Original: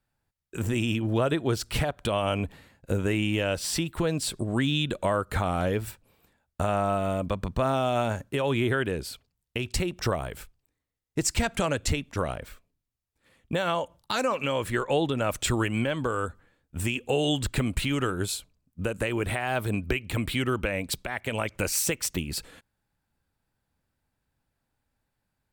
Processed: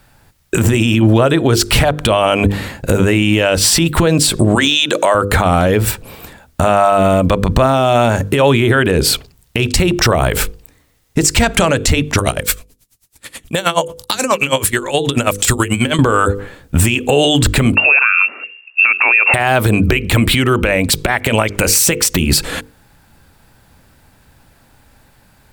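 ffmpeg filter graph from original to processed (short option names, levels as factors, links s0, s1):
-filter_complex "[0:a]asettb=1/sr,asplit=3[s0][s1][s2];[s0]atrim=end=4.554[s3];[s1]atrim=start=4.55:end=5.15,asetpts=PTS-STARTPTS,afade=t=in:d=0.004:c=qsin,afade=t=out:st=0.596:d=0.004:c=qsin,highpass=430,equalizer=f=6000:t=o:w=0.38:g=11.5[s4];[s2]atrim=start=5.146[s5];[s3][s4]acrossfade=d=0.004:c1=hsin:c2=qsin[s6];[s6][s5]acrossfade=d=0.004:c1=qsin:c2=hsin,asettb=1/sr,asplit=3[s7][s8][s9];[s7]atrim=end=12.184[s10];[s8]atrim=start=12.18:end=15.99,asetpts=PTS-STARTPTS,afade=t=in:d=0.004:c=qsin,afade=t=out:st=3.806:d=0.004:c=qsin,equalizer=f=10000:w=0.31:g=14.5,aeval=exprs='(mod(1.58*val(0)+1,2)-1)/1.58':c=same,aeval=exprs='val(0)*pow(10,-26*(0.5-0.5*cos(2*PI*9.3*n/s))/20)':c=same[s11];[s9]atrim=start=15.986[s12];[s10][s11]acrossfade=d=0.004:c1=hsin:c2=qsin[s13];[s13][s12]acrossfade=d=0.004:c1=qsin:c2=hsin,asettb=1/sr,asplit=3[s14][s15][s16];[s14]atrim=end=17.754[s17];[s15]atrim=start=17.75:end=19.34,asetpts=PTS-STARTPTS,afade=t=in:d=0.004:c=qsin,afade=t=out:st=1.586:d=0.004:c=qsin,lowpass=f=2400:t=q:w=0.5098,lowpass=f=2400:t=q:w=0.6013,lowpass=f=2400:t=q:w=0.9,lowpass=f=2400:t=q:w=2.563,afreqshift=-2800,highpass=480[s18];[s16]atrim=start=19.336[s19];[s17][s18]acrossfade=d=0.004:c1=hsin:c2=qsin[s20];[s20][s19]acrossfade=d=0.004:c1=qsin:c2=hsin,bandreject=f=50:t=h:w=6,bandreject=f=100:t=h:w=6,bandreject=f=150:t=h:w=6,bandreject=f=200:t=h:w=6,bandreject=f=250:t=h:w=6,bandreject=f=300:t=h:w=6,bandreject=f=350:t=h:w=6,bandreject=f=400:t=h:w=6,bandreject=f=450:t=h:w=6,bandreject=f=500:t=h:w=6,acompressor=threshold=0.0126:ratio=4,alimiter=level_in=35.5:limit=0.891:release=50:level=0:latency=1,volume=0.891"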